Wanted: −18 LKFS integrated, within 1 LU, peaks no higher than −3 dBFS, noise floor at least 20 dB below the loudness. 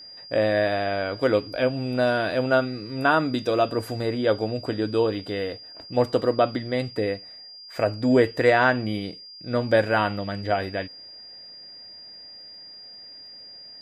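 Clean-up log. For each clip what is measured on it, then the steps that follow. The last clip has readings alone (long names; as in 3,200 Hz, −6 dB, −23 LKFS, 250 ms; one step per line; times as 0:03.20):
crackle rate 21 per second; interfering tone 4,800 Hz; level of the tone −41 dBFS; integrated loudness −24.0 LKFS; sample peak −5.5 dBFS; target loudness −18.0 LKFS
→ click removal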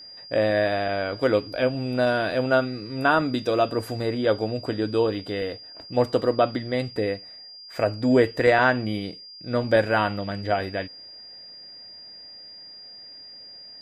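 crackle rate 0 per second; interfering tone 4,800 Hz; level of the tone −41 dBFS
→ notch filter 4,800 Hz, Q 30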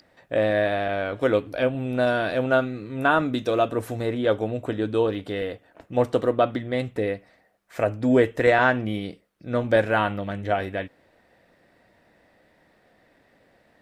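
interfering tone none found; integrated loudness −24.0 LKFS; sample peak −5.5 dBFS; target loudness −18.0 LKFS
→ level +6 dB
brickwall limiter −3 dBFS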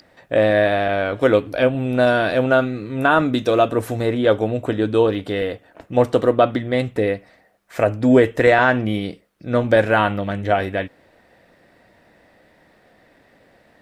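integrated loudness −18.5 LKFS; sample peak −3.0 dBFS; background noise floor −56 dBFS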